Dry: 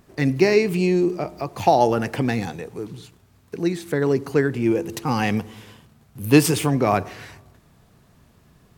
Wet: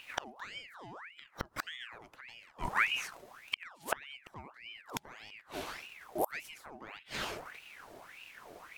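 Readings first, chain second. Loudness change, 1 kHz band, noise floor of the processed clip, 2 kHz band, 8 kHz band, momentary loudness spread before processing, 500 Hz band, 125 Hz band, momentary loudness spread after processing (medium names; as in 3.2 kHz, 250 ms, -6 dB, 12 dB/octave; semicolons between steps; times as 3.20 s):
-18.5 dB, -16.0 dB, -63 dBFS, -8.0 dB, -15.5 dB, 17 LU, -24.5 dB, -29.5 dB, 15 LU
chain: inverted gate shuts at -19 dBFS, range -32 dB; ring modulator with a swept carrier 1.6 kHz, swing 70%, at 1.7 Hz; trim +5 dB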